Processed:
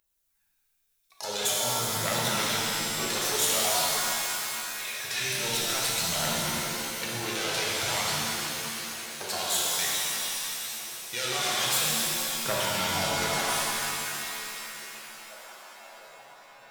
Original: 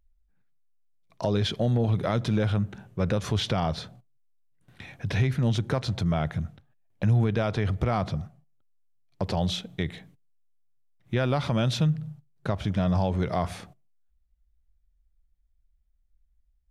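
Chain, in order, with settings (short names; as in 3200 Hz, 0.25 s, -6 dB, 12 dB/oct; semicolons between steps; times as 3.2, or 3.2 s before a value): self-modulated delay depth 0.18 ms; differentiator; in parallel at 0 dB: negative-ratio compressor -48 dBFS; on the sum: phaser 0.48 Hz, delay 2.9 ms, feedback 65%; delay with a stepping band-pass 0.703 s, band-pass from 3100 Hz, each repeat -0.7 oct, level -9.5 dB; shimmer reverb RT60 2.9 s, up +7 st, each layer -2 dB, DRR -4.5 dB; gain +3.5 dB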